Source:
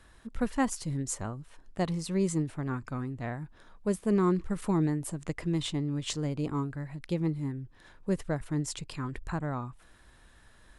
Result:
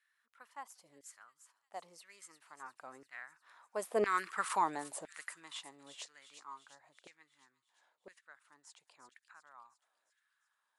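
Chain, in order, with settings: Doppler pass-by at 4.33 s, 10 m/s, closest 1.6 m; feedback echo behind a high-pass 352 ms, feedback 55%, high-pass 3.6 kHz, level -9 dB; LFO high-pass saw down 0.99 Hz 550–1900 Hz; trim +7.5 dB

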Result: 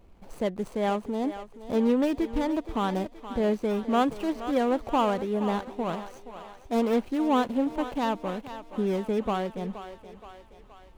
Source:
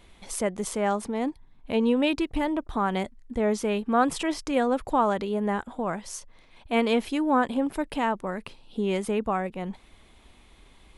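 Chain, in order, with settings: median filter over 25 samples; thinning echo 473 ms, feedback 59%, high-pass 410 Hz, level -11 dB

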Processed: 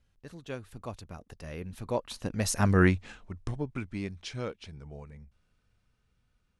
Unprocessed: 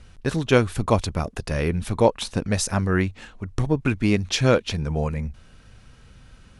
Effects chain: Doppler pass-by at 2.79 s, 17 m/s, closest 3.4 m

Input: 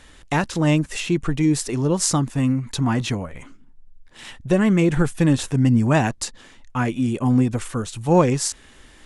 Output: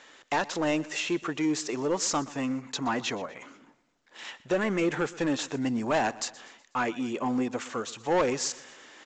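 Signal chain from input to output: high-pass 420 Hz 12 dB/octave; peaking EQ 4.6 kHz -3 dB 1.9 oct; reverse; upward compressor, threshold -45 dBFS; reverse; saturation -19 dBFS, distortion -11 dB; on a send: feedback delay 123 ms, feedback 48%, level -20 dB; on the sum: µ-law 128 kbps 16 kHz

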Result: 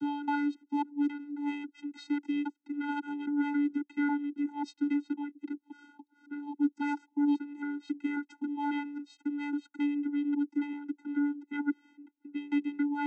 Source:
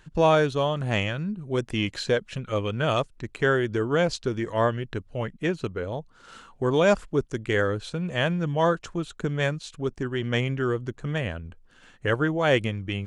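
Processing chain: slices played last to first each 272 ms, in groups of 3; vocoder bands 16, square 289 Hz; trim -6 dB

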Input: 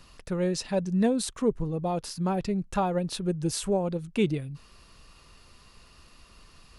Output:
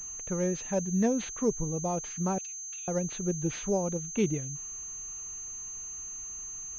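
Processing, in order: 2.38–2.88 s: steep high-pass 2.4 kHz 72 dB/octave; class-D stage that switches slowly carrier 6.3 kHz; trim -2.5 dB

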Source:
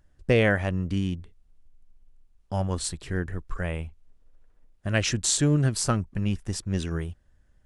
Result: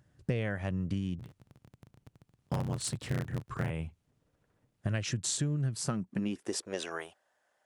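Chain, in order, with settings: 1.18–3.71 s: cycle switcher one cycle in 3, inverted; high-pass sweep 120 Hz -> 710 Hz, 5.73–6.93 s; compression 10:1, threshold -29 dBFS, peak gain reduction 16 dB

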